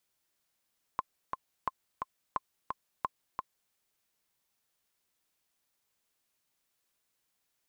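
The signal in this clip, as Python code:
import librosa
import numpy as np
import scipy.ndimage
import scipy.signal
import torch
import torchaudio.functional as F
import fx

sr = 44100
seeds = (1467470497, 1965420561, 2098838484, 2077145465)

y = fx.click_track(sr, bpm=175, beats=2, bars=4, hz=1050.0, accent_db=4.0, level_db=-17.0)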